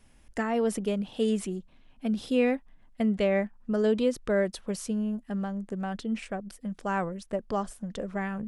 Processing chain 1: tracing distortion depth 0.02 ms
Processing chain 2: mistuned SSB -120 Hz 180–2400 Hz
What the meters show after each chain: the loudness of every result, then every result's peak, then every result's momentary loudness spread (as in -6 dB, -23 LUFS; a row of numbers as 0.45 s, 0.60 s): -30.0 LUFS, -31.0 LUFS; -14.0 dBFS, -15.0 dBFS; 10 LU, 12 LU